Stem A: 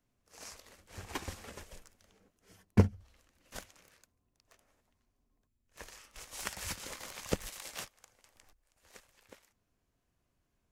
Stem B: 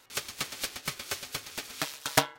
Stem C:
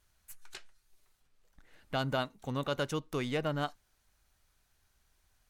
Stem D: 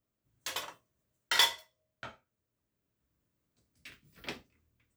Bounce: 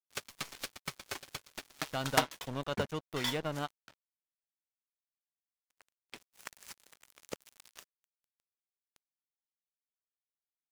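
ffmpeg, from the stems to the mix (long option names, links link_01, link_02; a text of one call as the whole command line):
ffmpeg -i stem1.wav -i stem2.wav -i stem3.wav -i stem4.wav -filter_complex "[0:a]highpass=frequency=510:poles=1,volume=-3dB[link_01];[1:a]highshelf=frequency=3800:gain=-4.5,volume=-2.5dB[link_02];[2:a]deesser=0.95,volume=-1dB,asplit=2[link_03][link_04];[3:a]adelay=1850,volume=-4dB[link_05];[link_04]apad=whole_len=300663[link_06];[link_05][link_06]sidechaincompress=threshold=-36dB:ratio=8:attack=6.4:release=164[link_07];[link_01][link_02][link_03][link_07]amix=inputs=4:normalize=0,aeval=exprs='sgn(val(0))*max(abs(val(0))-0.0075,0)':channel_layout=same" out.wav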